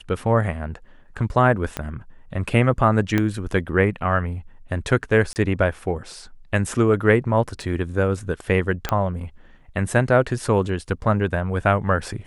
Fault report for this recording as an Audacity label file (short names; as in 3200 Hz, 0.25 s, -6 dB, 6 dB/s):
1.770000	1.770000	pop -11 dBFS
3.180000	3.180000	pop -8 dBFS
5.330000	5.360000	gap 29 ms
7.620000	7.620000	gap 2.8 ms
8.890000	8.890000	pop -8 dBFS